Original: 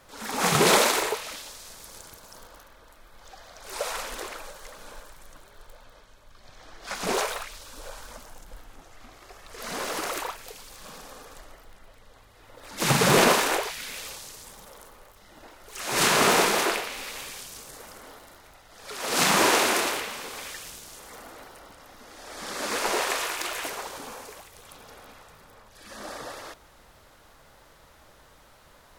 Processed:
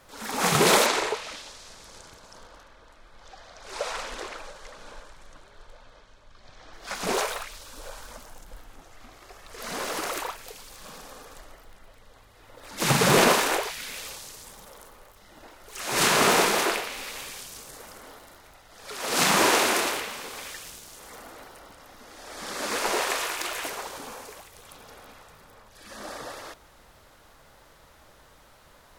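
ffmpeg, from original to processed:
ffmpeg -i in.wav -filter_complex "[0:a]asettb=1/sr,asplit=3[link_01][link_02][link_03];[link_01]atrim=end=0.864[link_04];[link_02]atrim=start=0.86:end=6.73,asetpts=PTS-STARTPTS,afade=type=in:duration=0.004:curve=qsin,afade=type=out:start_time=5.866:duration=0.004:curve=qsin,lowpass=6700[link_05];[link_03]atrim=start=6.726[link_06];[link_04][link_05]acrossfade=duration=0.004:curve1=hsin:curve2=qsin[link_07];[link_07][link_06]acrossfade=duration=0.004:curve1=qsin:curve2=hsin,asettb=1/sr,asplit=3[link_08][link_09][link_10];[link_08]atrim=end=19.914[link_11];[link_09]atrim=start=19.91:end=21.01,asetpts=PTS-STARTPTS,afade=type=in:duration=0.004:curve=qsin,afade=type=out:start_time=1.096:duration=0.004:curve=qsin,aeval=exprs='sgn(val(0))*max(abs(val(0))-0.00106,0)':channel_layout=same[link_12];[link_10]atrim=start=21.006[link_13];[link_11][link_12]acrossfade=duration=0.004:curve1=hsin:curve2=qsin[link_14];[link_14][link_13]acrossfade=duration=0.004:curve1=qsin:curve2=hsin" out.wav

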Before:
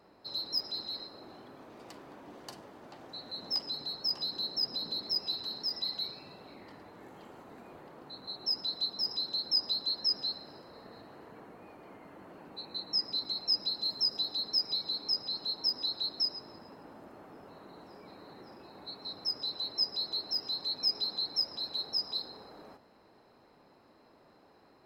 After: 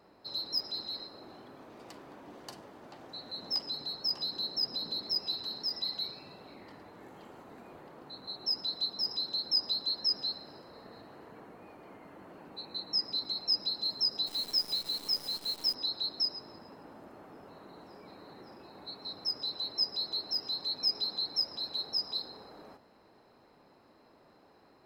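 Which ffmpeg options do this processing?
ffmpeg -i in.wav -filter_complex "[0:a]asplit=3[link_01][link_02][link_03];[link_01]afade=type=out:start_time=14.26:duration=0.02[link_04];[link_02]acrusher=bits=8:dc=4:mix=0:aa=0.000001,afade=type=in:start_time=14.26:duration=0.02,afade=type=out:start_time=15.73:duration=0.02[link_05];[link_03]afade=type=in:start_time=15.73:duration=0.02[link_06];[link_04][link_05][link_06]amix=inputs=3:normalize=0" out.wav

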